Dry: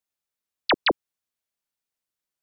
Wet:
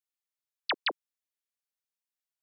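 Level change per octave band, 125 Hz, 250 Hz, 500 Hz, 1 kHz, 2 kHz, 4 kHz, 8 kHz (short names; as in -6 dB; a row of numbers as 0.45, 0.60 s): under -20 dB, -18.0 dB, -14.0 dB, -10.0 dB, -7.5 dB, -7.0 dB, n/a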